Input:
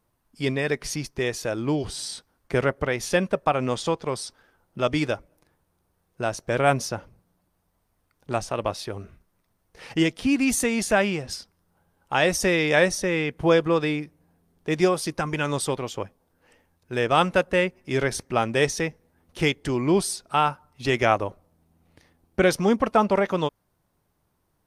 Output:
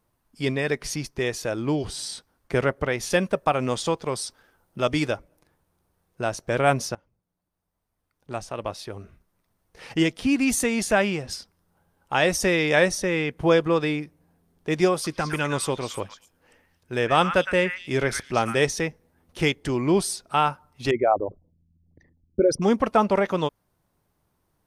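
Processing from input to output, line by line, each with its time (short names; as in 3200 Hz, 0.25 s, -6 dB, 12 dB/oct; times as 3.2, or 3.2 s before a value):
3.1–5.09 high shelf 6300 Hz +5.5 dB
6.95–9.87 fade in, from -21.5 dB
14.93–18.58 delay with a stepping band-pass 0.112 s, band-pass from 1700 Hz, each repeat 1.4 oct, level -4 dB
20.91–22.62 formant sharpening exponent 3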